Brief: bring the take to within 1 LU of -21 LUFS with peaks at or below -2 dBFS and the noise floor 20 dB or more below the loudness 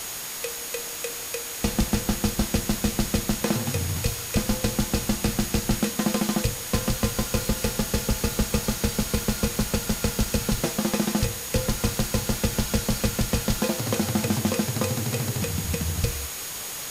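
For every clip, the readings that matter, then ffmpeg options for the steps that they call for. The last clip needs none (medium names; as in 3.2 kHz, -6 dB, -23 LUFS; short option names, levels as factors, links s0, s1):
steady tone 6.7 kHz; tone level -39 dBFS; noise floor -34 dBFS; noise floor target -46 dBFS; loudness -26.0 LUFS; peak level -10.5 dBFS; loudness target -21.0 LUFS
-> -af "bandreject=f=6700:w=30"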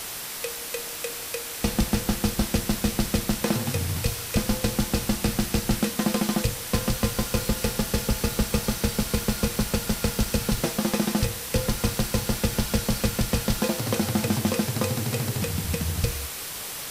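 steady tone not found; noise floor -35 dBFS; noise floor target -46 dBFS
-> -af "afftdn=nr=11:nf=-35"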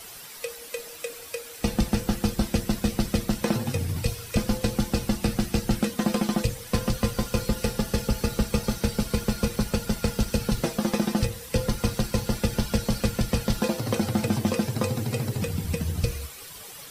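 noise floor -43 dBFS; noise floor target -48 dBFS
-> -af "afftdn=nr=6:nf=-43"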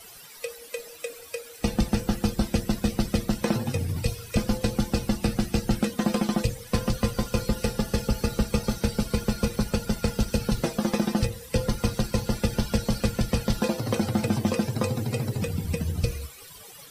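noise floor -46 dBFS; noise floor target -48 dBFS
-> -af "afftdn=nr=6:nf=-46"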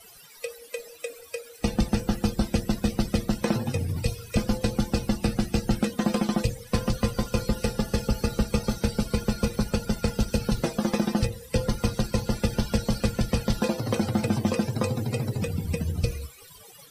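noise floor -49 dBFS; loudness -27.5 LUFS; peak level -11.5 dBFS; loudness target -21.0 LUFS
-> -af "volume=2.11"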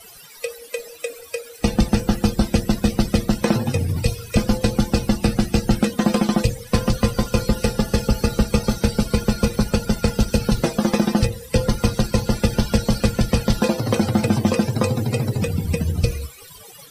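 loudness -21.0 LUFS; peak level -5.0 dBFS; noise floor -43 dBFS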